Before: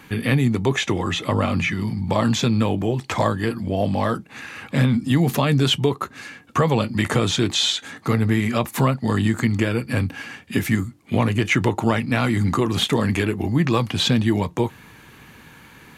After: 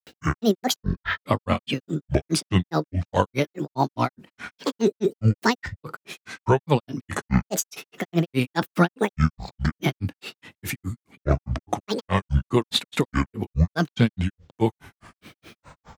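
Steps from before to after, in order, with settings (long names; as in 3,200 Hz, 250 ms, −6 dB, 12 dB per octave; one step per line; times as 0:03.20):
granular cloud 138 ms, grains 4.8 per second, pitch spread up and down by 12 semitones
level +2 dB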